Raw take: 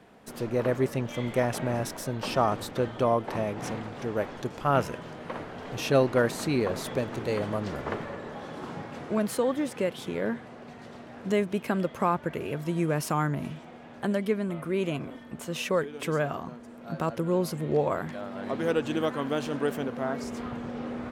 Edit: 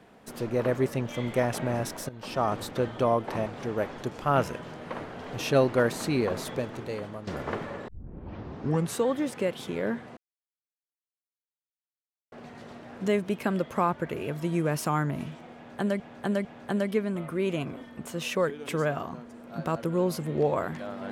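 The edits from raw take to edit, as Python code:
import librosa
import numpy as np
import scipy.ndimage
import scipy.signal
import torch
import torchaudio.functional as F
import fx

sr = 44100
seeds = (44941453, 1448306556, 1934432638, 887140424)

y = fx.edit(x, sr, fx.fade_in_from(start_s=2.09, length_s=0.49, floor_db=-15.0),
    fx.cut(start_s=3.46, length_s=0.39),
    fx.fade_out_to(start_s=6.71, length_s=0.95, floor_db=-11.5),
    fx.tape_start(start_s=8.27, length_s=1.18),
    fx.insert_silence(at_s=10.56, length_s=2.15),
    fx.repeat(start_s=13.79, length_s=0.45, count=3), tone=tone)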